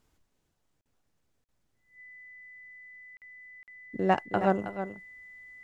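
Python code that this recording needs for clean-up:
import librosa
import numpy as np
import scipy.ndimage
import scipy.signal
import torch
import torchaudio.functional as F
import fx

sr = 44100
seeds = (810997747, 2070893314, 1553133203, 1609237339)

y = fx.notch(x, sr, hz=2000.0, q=30.0)
y = fx.fix_interpolate(y, sr, at_s=(0.81, 1.44, 3.17, 3.63), length_ms=48.0)
y = fx.fix_echo_inverse(y, sr, delay_ms=319, level_db=-10.0)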